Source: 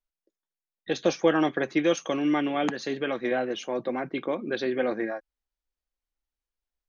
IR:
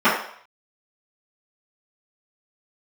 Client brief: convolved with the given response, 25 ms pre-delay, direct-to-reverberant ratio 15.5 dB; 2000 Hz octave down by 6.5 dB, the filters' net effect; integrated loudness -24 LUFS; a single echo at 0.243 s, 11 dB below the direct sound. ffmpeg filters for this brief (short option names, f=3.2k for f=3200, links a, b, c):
-filter_complex "[0:a]equalizer=f=2k:t=o:g=-8.5,aecho=1:1:243:0.282,asplit=2[a][b];[1:a]atrim=start_sample=2205,adelay=25[c];[b][c]afir=irnorm=-1:irlink=0,volume=-39.5dB[d];[a][d]amix=inputs=2:normalize=0,volume=4dB"